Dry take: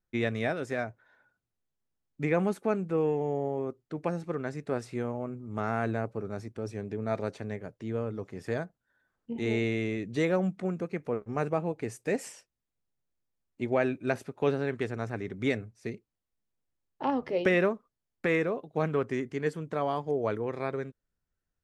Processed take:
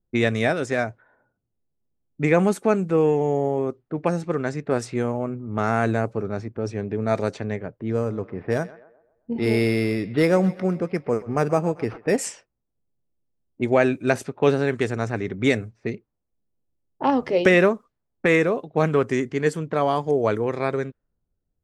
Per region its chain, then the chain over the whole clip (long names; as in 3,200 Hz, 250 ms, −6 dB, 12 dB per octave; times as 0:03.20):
0:07.90–0:12.18: Butterworth low-pass 8,000 Hz 72 dB per octave + feedback echo with a high-pass in the loop 129 ms, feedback 60%, level −17 dB + linearly interpolated sample-rate reduction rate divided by 6×
whole clip: dynamic equaliser 7,700 Hz, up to +7 dB, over −59 dBFS, Q 0.93; low-pass that shuts in the quiet parts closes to 520 Hz, open at −27.5 dBFS; level +8.5 dB